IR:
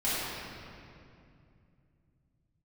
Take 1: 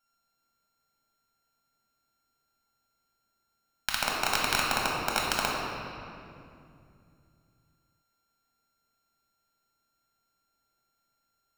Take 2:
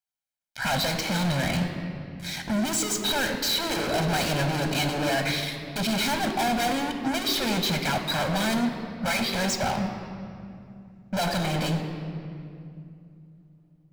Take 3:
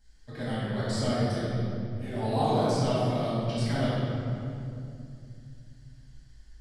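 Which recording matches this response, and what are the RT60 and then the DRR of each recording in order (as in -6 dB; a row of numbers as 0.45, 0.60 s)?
3; 2.5, 2.6, 2.5 s; -3.5, 5.5, -12.0 dB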